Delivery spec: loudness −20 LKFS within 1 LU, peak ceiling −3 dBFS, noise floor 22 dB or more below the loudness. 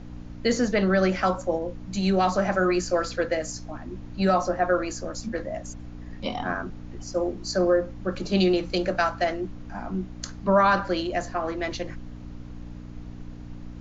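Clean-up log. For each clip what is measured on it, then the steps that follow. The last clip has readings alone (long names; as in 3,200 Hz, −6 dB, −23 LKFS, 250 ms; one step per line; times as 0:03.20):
mains hum 60 Hz; hum harmonics up to 300 Hz; level of the hum −38 dBFS; background noise floor −40 dBFS; target noise floor −48 dBFS; integrated loudness −25.5 LKFS; sample peak −9.5 dBFS; target loudness −20.0 LKFS
→ hum removal 60 Hz, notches 5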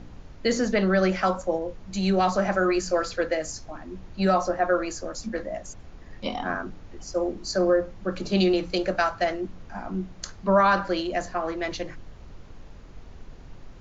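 mains hum none found; background noise floor −45 dBFS; target noise floor −48 dBFS
→ noise reduction from a noise print 6 dB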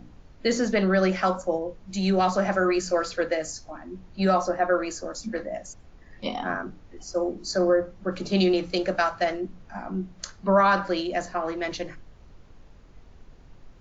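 background noise floor −51 dBFS; integrated loudness −26.0 LKFS; sample peak −10.0 dBFS; target loudness −20.0 LKFS
→ level +6 dB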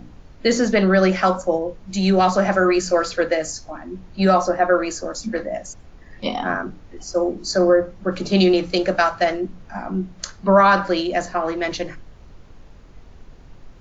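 integrated loudness −20.0 LKFS; sample peak −4.0 dBFS; background noise floor −45 dBFS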